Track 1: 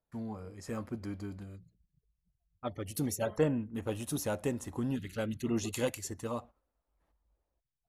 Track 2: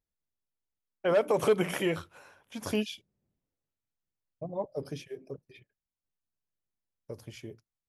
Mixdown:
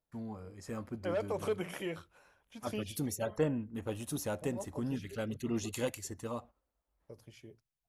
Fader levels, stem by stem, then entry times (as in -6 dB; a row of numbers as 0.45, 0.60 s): -2.5, -9.5 dB; 0.00, 0.00 s